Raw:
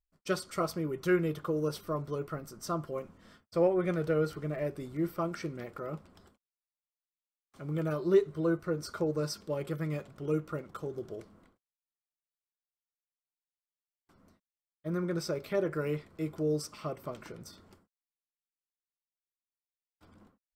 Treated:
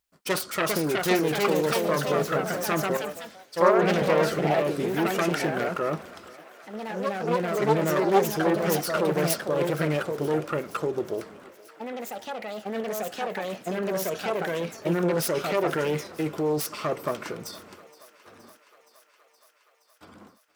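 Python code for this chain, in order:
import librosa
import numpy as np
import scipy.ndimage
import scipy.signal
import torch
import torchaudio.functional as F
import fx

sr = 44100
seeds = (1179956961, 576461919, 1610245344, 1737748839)

p1 = fx.self_delay(x, sr, depth_ms=0.46)
p2 = fx.highpass(p1, sr, hz=300.0, slope=6)
p3 = fx.over_compress(p2, sr, threshold_db=-38.0, ratio=-0.5)
p4 = p2 + F.gain(torch.from_numpy(p3), -2.0).numpy()
p5 = fx.echo_pitch(p4, sr, ms=433, semitones=2, count=3, db_per_echo=-3.0)
p6 = fx.echo_thinned(p5, sr, ms=470, feedback_pct=76, hz=390.0, wet_db=-20.0)
p7 = fx.band_widen(p6, sr, depth_pct=100, at=(2.97, 4.02))
y = F.gain(torch.from_numpy(p7), 6.0).numpy()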